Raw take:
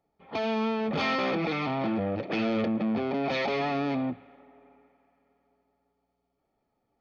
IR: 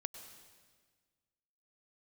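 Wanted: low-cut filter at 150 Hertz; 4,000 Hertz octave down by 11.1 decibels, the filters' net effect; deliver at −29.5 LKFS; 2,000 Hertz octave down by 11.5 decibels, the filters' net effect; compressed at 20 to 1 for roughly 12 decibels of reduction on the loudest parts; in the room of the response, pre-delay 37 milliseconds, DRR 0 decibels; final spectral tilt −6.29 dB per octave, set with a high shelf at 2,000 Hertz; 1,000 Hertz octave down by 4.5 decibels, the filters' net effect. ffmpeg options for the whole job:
-filter_complex "[0:a]highpass=150,equalizer=frequency=1000:width_type=o:gain=-3,highshelf=frequency=2000:gain=-4.5,equalizer=frequency=2000:width_type=o:gain=-8.5,equalizer=frequency=4000:width_type=o:gain=-6.5,acompressor=threshold=-38dB:ratio=20,asplit=2[link_01][link_02];[1:a]atrim=start_sample=2205,adelay=37[link_03];[link_02][link_03]afir=irnorm=-1:irlink=0,volume=2dB[link_04];[link_01][link_04]amix=inputs=2:normalize=0,volume=10dB"

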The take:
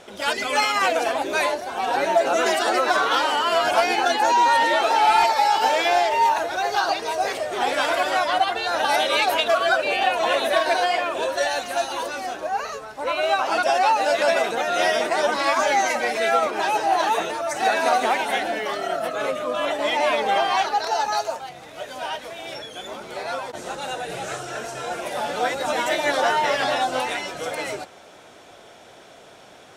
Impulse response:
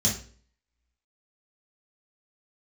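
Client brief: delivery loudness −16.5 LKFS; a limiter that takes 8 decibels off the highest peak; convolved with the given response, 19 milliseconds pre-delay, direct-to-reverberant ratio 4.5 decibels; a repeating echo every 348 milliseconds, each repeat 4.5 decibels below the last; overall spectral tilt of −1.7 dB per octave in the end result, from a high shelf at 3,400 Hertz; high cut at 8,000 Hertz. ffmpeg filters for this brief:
-filter_complex "[0:a]lowpass=8000,highshelf=frequency=3400:gain=6,alimiter=limit=-13dB:level=0:latency=1,aecho=1:1:348|696|1044|1392|1740|2088|2436|2784|3132:0.596|0.357|0.214|0.129|0.0772|0.0463|0.0278|0.0167|0.01,asplit=2[link_01][link_02];[1:a]atrim=start_sample=2205,adelay=19[link_03];[link_02][link_03]afir=irnorm=-1:irlink=0,volume=-13.5dB[link_04];[link_01][link_04]amix=inputs=2:normalize=0,volume=2.5dB"

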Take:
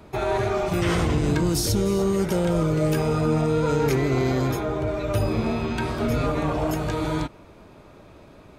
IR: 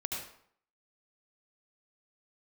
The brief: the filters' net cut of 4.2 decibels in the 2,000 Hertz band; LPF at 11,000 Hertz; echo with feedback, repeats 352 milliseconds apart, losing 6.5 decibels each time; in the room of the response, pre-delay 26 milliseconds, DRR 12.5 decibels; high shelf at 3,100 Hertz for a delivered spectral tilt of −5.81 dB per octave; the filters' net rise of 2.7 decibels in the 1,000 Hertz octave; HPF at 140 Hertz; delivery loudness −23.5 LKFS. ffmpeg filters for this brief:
-filter_complex "[0:a]highpass=140,lowpass=11000,equalizer=frequency=1000:width_type=o:gain=5.5,equalizer=frequency=2000:width_type=o:gain=-5.5,highshelf=frequency=3100:gain=-6.5,aecho=1:1:352|704|1056|1408|1760|2112:0.473|0.222|0.105|0.0491|0.0231|0.0109,asplit=2[link_01][link_02];[1:a]atrim=start_sample=2205,adelay=26[link_03];[link_02][link_03]afir=irnorm=-1:irlink=0,volume=-15.5dB[link_04];[link_01][link_04]amix=inputs=2:normalize=0,volume=-0.5dB"

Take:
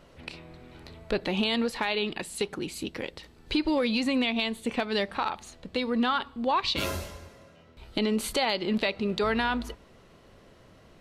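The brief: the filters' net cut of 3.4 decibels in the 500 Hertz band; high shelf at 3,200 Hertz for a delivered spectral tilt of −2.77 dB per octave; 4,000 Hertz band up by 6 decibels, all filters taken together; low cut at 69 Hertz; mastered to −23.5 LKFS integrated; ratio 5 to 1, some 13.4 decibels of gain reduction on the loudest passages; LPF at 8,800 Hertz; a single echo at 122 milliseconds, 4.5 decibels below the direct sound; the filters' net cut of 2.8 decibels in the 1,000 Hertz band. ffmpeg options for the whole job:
ffmpeg -i in.wav -af "highpass=69,lowpass=8800,equalizer=frequency=500:width_type=o:gain=-3.5,equalizer=frequency=1000:width_type=o:gain=-3.5,highshelf=frequency=3200:gain=7,equalizer=frequency=4000:width_type=o:gain=3,acompressor=threshold=-33dB:ratio=5,aecho=1:1:122:0.596,volume=11.5dB" out.wav

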